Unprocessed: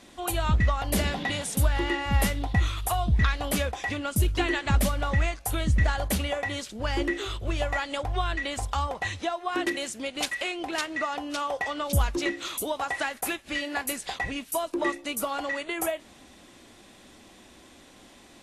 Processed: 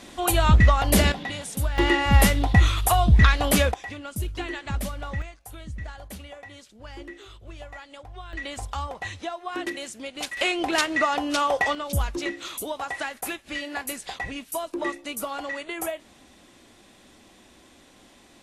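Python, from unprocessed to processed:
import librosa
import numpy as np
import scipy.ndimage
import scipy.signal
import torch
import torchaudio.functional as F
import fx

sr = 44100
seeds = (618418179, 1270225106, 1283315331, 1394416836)

y = fx.gain(x, sr, db=fx.steps((0.0, 7.0), (1.12, -3.0), (1.78, 7.0), (3.74, -6.0), (5.22, -13.0), (8.33, -3.0), (10.37, 7.0), (11.75, -1.5)))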